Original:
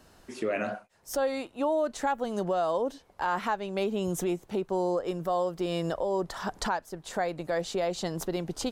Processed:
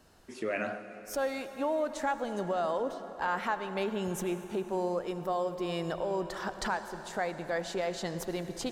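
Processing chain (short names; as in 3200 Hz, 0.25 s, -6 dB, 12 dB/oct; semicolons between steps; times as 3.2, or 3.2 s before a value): dynamic EQ 1900 Hz, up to +5 dB, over -46 dBFS, Q 1.4; on a send: reverb RT60 4.5 s, pre-delay 63 ms, DRR 10 dB; on the sum: gain -4 dB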